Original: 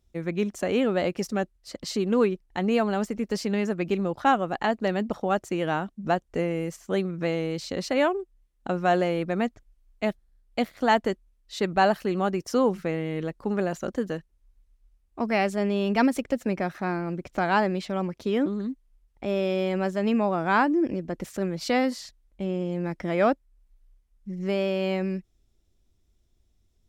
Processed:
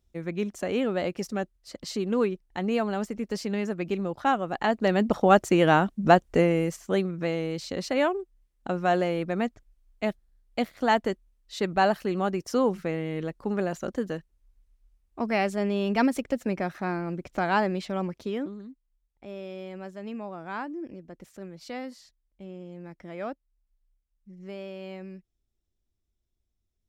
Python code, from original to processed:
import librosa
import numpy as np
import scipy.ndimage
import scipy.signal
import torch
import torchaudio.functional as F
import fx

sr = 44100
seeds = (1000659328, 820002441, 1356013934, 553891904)

y = fx.gain(x, sr, db=fx.line((4.41, -3.0), (5.27, 7.0), (6.26, 7.0), (7.22, -1.5), (18.13, -1.5), (18.68, -13.0)))